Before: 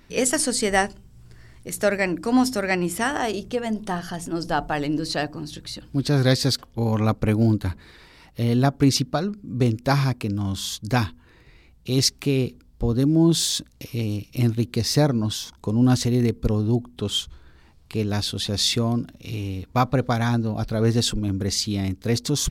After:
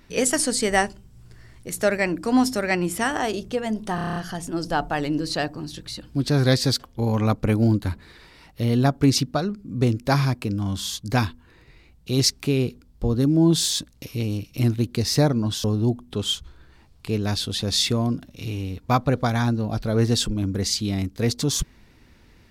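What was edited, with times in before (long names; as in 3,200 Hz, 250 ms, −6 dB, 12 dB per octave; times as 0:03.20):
0:03.95: stutter 0.03 s, 8 plays
0:15.43–0:16.50: remove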